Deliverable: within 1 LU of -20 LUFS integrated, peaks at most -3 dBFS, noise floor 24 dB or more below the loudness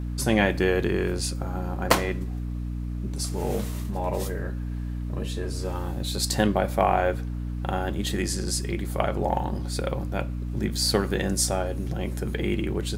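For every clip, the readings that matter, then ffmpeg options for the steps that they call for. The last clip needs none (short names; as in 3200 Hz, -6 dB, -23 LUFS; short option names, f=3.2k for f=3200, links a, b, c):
hum 60 Hz; harmonics up to 300 Hz; hum level -28 dBFS; loudness -27.0 LUFS; peak -6.5 dBFS; loudness target -20.0 LUFS
-> -af "bandreject=f=60:t=h:w=6,bandreject=f=120:t=h:w=6,bandreject=f=180:t=h:w=6,bandreject=f=240:t=h:w=6,bandreject=f=300:t=h:w=6"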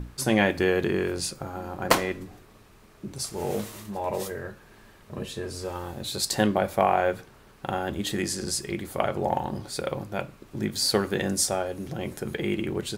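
hum none; loudness -28.0 LUFS; peak -7.0 dBFS; loudness target -20.0 LUFS
-> -af "volume=8dB,alimiter=limit=-3dB:level=0:latency=1"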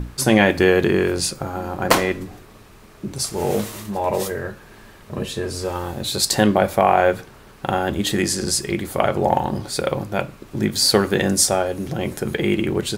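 loudness -20.5 LUFS; peak -3.0 dBFS; noise floor -45 dBFS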